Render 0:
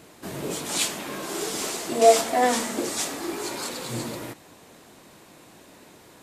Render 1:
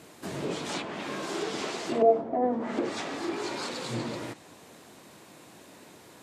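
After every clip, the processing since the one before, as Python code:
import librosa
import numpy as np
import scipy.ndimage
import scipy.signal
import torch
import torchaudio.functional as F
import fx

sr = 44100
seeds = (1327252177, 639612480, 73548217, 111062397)

y = fx.env_lowpass_down(x, sr, base_hz=520.0, full_db=-18.5)
y = scipy.signal.sosfilt(scipy.signal.butter(2, 78.0, 'highpass', fs=sr, output='sos'), y)
y = y * librosa.db_to_amplitude(-1.0)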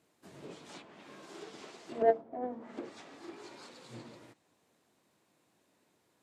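y = fx.cheby_harmonics(x, sr, harmonics=(3, 7), levels_db=(-20, -42), full_scale_db=-9.5)
y = fx.upward_expand(y, sr, threshold_db=-47.0, expansion=1.5)
y = y * librosa.db_to_amplitude(-3.0)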